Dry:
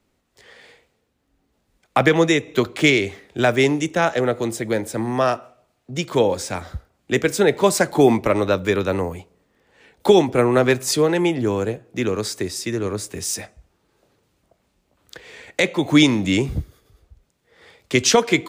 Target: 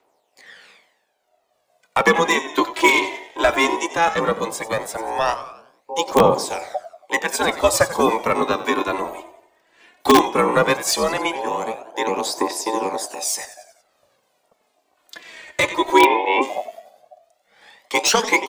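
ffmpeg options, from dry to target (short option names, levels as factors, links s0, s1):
-filter_complex "[0:a]asplit=6[s0][s1][s2][s3][s4][s5];[s1]adelay=92,afreqshift=-50,volume=0.2[s6];[s2]adelay=184,afreqshift=-100,volume=0.0977[s7];[s3]adelay=276,afreqshift=-150,volume=0.0479[s8];[s4]adelay=368,afreqshift=-200,volume=0.0234[s9];[s5]adelay=460,afreqshift=-250,volume=0.0115[s10];[s0][s6][s7][s8][s9][s10]amix=inputs=6:normalize=0,aphaser=in_gain=1:out_gain=1:delay=3.4:decay=0.59:speed=0.16:type=triangular,acrossover=split=460|1100[s11][s12][s13];[s11]aeval=exprs='val(0)*sin(2*PI*670*n/s)':c=same[s14];[s13]asoftclip=type=hard:threshold=0.211[s15];[s14][s12][s15]amix=inputs=3:normalize=0,asplit=3[s16][s17][s18];[s16]afade=t=out:st=15.98:d=0.02[s19];[s17]highpass=120,equalizer=f=170:t=q:w=4:g=-8,equalizer=f=490:t=q:w=4:g=7,equalizer=f=840:t=q:w=4:g=10,equalizer=f=1300:t=q:w=4:g=-8,equalizer=f=2400:t=q:w=4:g=5,lowpass=f=3000:w=0.5412,lowpass=f=3000:w=1.3066,afade=t=in:st=15.98:d=0.02,afade=t=out:st=16.41:d=0.02[s20];[s18]afade=t=in:st=16.41:d=0.02[s21];[s19][s20][s21]amix=inputs=3:normalize=0,asplit=2[s22][s23];[s23]aeval=exprs='(mod(1.19*val(0)+1,2)-1)/1.19':c=same,volume=0.562[s24];[s22][s24]amix=inputs=2:normalize=0,volume=0.668"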